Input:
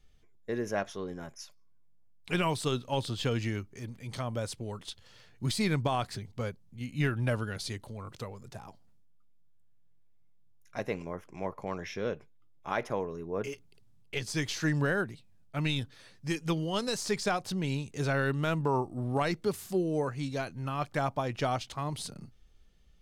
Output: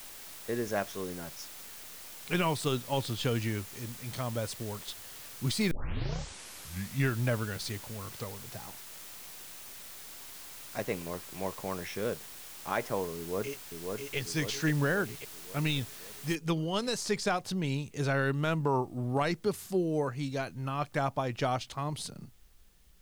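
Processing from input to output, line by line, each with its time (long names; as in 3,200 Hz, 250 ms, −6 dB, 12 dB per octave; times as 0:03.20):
0:05.71: tape start 1.40 s
0:13.17–0:14.16: delay throw 540 ms, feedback 60%, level −3.5 dB
0:16.35: noise floor change −47 dB −69 dB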